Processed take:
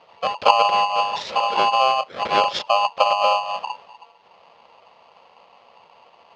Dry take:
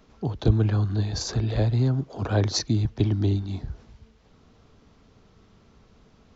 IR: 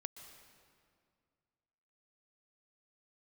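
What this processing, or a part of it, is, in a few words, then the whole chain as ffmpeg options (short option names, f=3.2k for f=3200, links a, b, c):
ring modulator pedal into a guitar cabinet: -af "aeval=exprs='val(0)*sgn(sin(2*PI*920*n/s))':c=same,highpass=110,equalizer=f=130:t=q:w=4:g=-6,equalizer=f=290:t=q:w=4:g=-8,equalizer=f=560:t=q:w=4:g=8,equalizer=f=1.5k:t=q:w=4:g=-7,lowpass=f=4.3k:w=0.5412,lowpass=f=4.3k:w=1.3066,volume=4dB"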